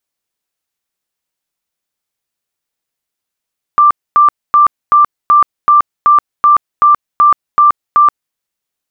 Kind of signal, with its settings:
tone bursts 1,180 Hz, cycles 150, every 0.38 s, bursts 12, −3.5 dBFS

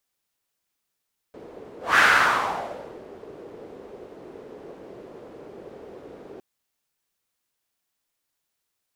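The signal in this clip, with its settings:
pass-by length 5.06 s, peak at 0:00.64, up 0.20 s, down 1.14 s, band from 420 Hz, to 1,600 Hz, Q 2.8, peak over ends 26 dB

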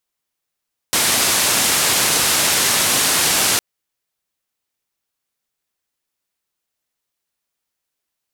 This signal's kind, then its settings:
band-limited noise 91–11,000 Hz, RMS −16.5 dBFS 2.66 s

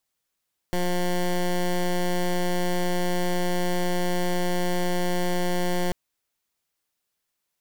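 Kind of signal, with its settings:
pulse wave 178 Hz, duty 14% −23.5 dBFS 5.19 s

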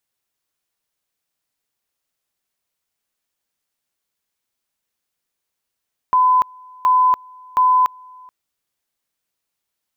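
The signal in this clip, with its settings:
tone at two levels in turn 1,010 Hz −10.5 dBFS, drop 28 dB, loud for 0.29 s, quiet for 0.43 s, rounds 3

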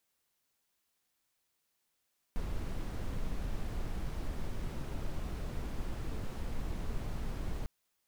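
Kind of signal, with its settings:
noise brown, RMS −35.5 dBFS 5.30 s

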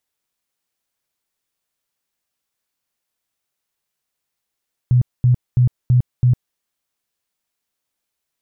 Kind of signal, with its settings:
tone bursts 124 Hz, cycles 13, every 0.33 s, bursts 5, −9.5 dBFS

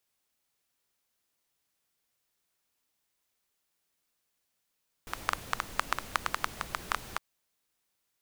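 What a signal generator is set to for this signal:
rain-like ticks over hiss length 2.11 s, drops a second 8.1, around 1,200 Hz, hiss −8.5 dB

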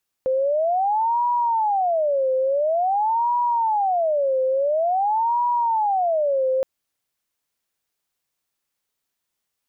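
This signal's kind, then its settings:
siren wail 520–967 Hz 0.48 per second sine −17.5 dBFS 6.37 s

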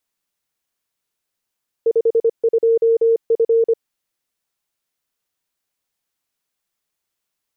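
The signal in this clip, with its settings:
Morse code "52F" 25 words per minute 457 Hz −11 dBFS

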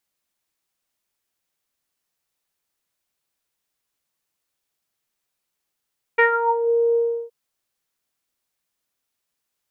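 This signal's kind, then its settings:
subtractive voice saw A#4 24 dB per octave, low-pass 550 Hz, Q 6.1, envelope 2 octaves, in 0.51 s, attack 12 ms, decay 0.12 s, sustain −9 dB, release 0.34 s, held 0.78 s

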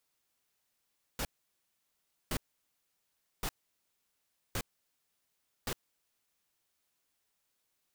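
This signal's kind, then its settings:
noise bursts pink, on 0.06 s, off 1.06 s, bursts 5, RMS −34.5 dBFS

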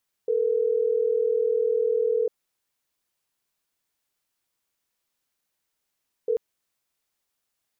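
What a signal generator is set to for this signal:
call progress tone ringback tone, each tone −23 dBFS 6.09 s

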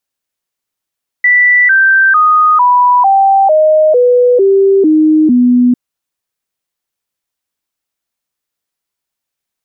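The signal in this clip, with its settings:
stepped sweep 1,970 Hz down, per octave 3, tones 10, 0.45 s, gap 0.00 s −4.5 dBFS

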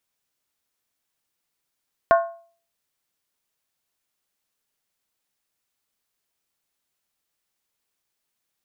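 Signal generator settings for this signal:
struck skin, lowest mode 675 Hz, decay 0.45 s, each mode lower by 5.5 dB, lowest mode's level −10 dB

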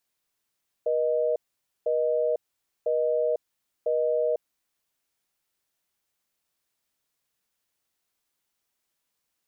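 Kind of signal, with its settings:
call progress tone busy tone, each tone −24.5 dBFS 3.51 s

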